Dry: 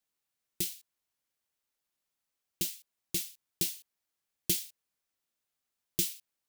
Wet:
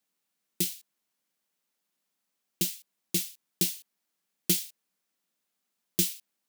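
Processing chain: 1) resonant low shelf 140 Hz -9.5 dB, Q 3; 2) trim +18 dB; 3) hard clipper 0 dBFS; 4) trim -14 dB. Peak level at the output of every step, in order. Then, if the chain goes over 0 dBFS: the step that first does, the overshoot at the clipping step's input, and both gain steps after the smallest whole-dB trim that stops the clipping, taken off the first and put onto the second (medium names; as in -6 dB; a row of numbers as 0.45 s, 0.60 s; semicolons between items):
-12.0 dBFS, +6.0 dBFS, 0.0 dBFS, -14.0 dBFS; step 2, 6.0 dB; step 2 +12 dB, step 4 -8 dB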